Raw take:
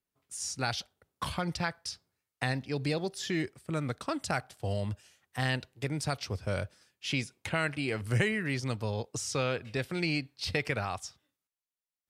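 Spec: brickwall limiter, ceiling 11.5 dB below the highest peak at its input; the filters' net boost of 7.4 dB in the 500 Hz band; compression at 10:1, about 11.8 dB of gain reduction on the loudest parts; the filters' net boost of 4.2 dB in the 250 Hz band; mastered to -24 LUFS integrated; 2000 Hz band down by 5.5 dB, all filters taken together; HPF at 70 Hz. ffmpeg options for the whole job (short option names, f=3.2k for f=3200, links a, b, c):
-af "highpass=70,equalizer=f=250:t=o:g=3,equalizer=f=500:t=o:g=8.5,equalizer=f=2k:t=o:g=-7.5,acompressor=threshold=-33dB:ratio=10,volume=17dB,alimiter=limit=-12dB:level=0:latency=1"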